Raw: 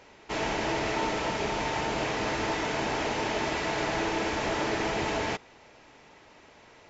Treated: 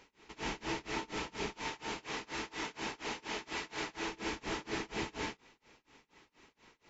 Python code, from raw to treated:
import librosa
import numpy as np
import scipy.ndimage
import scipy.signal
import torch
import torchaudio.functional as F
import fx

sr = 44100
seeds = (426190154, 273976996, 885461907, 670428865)

y = fx.low_shelf(x, sr, hz=300.0, db=-7.0, at=(1.52, 4.09))
y = y * (1.0 - 0.97 / 2.0 + 0.97 / 2.0 * np.cos(2.0 * np.pi * 4.2 * (np.arange(len(y)) / sr)))
y = fx.graphic_eq_15(y, sr, hz=(100, 630, 1600), db=(-8, -11, -3))
y = y * 10.0 ** (-3.0 / 20.0)